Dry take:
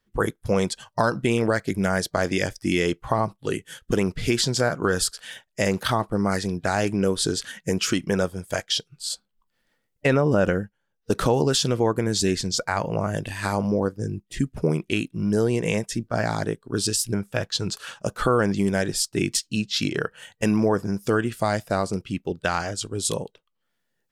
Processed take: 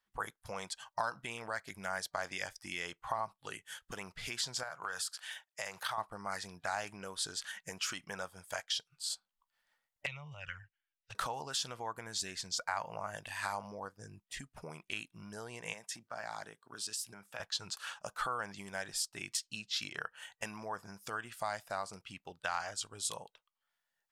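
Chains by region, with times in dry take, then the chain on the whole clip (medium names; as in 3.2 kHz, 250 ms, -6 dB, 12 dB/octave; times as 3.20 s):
4.63–5.98 s: high-pass 110 Hz 24 dB/octave + peaking EQ 250 Hz -13.5 dB 0.94 oct + compression 2:1, threshold -28 dBFS
10.06–11.15 s: FFT filter 150 Hz 0 dB, 210 Hz -30 dB, 1.5 kHz -8 dB, 2.2 kHz +5 dB, 7.6 kHz -13 dB, 12 kHz -29 dB + touch-sensitive flanger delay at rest 6.4 ms, full sweep at -23 dBFS
15.73–17.40 s: compression 3:1, threshold -29 dBFS + high-pass 150 Hz
whole clip: compression 2:1, threshold -29 dBFS; resonant low shelf 560 Hz -13.5 dB, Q 1.5; trim -6.5 dB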